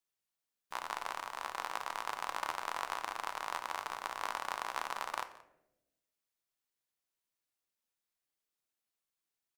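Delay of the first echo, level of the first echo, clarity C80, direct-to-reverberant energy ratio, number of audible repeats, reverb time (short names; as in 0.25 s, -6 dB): 0.176 s, -20.5 dB, 14.5 dB, 8.5 dB, 1, 0.90 s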